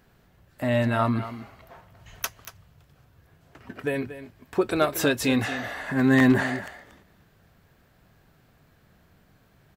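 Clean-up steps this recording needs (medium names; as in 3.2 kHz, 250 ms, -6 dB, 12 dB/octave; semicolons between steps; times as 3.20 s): clip repair -10 dBFS; de-click; inverse comb 233 ms -13 dB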